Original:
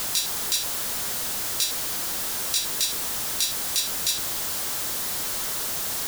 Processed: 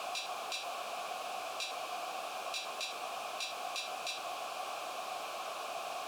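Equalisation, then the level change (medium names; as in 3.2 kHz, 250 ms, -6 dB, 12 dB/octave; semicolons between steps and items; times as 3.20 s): vowel filter a; bass shelf 94 Hz -7 dB; +7.5 dB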